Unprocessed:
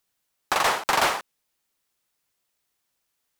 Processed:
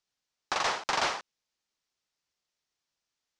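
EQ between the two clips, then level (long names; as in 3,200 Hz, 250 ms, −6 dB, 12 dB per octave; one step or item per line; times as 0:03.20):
transistor ladder low-pass 7,000 Hz, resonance 35%
0.0 dB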